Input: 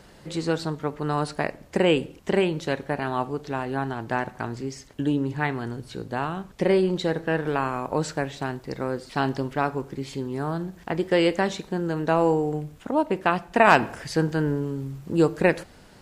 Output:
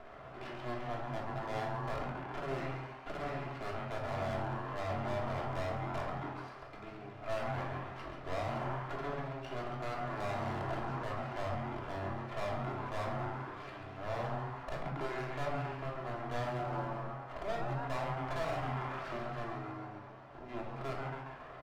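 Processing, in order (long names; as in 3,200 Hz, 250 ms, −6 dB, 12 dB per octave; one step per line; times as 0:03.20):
running median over 9 samples
downward compressor 5 to 1, threshold −33 dBFS, peak gain reduction 20 dB
four-pole ladder high-pass 700 Hz, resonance 50%
high-frequency loss of the air 130 metres
wrong playback speed 45 rpm record played at 33 rpm
half-wave rectification
high-shelf EQ 5,100 Hz −7 dB
echo with shifted repeats 137 ms, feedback 57%, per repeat +130 Hz, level −7 dB
asymmetric clip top −44.5 dBFS
brickwall limiter −47 dBFS, peak gain reduction 7.5 dB
rectangular room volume 1,000 cubic metres, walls furnished, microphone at 3.1 metres
level +12.5 dB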